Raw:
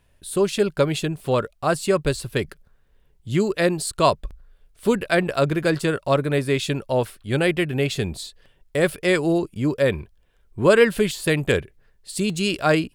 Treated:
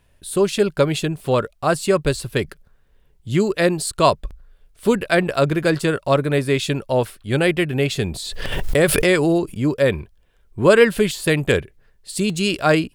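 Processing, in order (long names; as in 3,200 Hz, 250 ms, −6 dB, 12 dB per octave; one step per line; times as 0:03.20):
0:08.14–0:09.57: background raised ahead of every attack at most 30 dB per second
level +2.5 dB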